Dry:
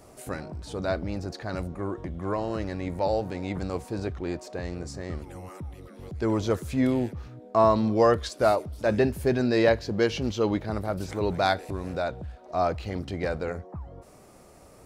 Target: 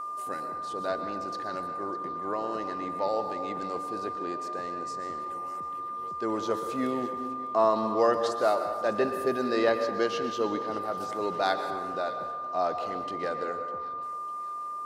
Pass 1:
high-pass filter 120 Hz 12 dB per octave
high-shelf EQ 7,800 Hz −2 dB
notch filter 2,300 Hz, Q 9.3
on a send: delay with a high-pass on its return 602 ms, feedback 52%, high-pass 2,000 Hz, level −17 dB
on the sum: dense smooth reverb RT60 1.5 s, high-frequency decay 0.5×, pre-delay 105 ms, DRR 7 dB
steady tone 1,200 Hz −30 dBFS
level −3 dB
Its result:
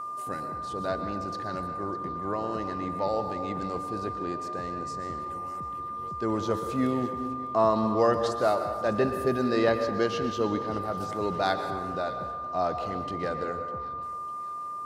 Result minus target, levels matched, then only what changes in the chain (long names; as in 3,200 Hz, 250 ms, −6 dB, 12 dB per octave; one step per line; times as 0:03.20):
125 Hz band +10.0 dB
change: high-pass filter 290 Hz 12 dB per octave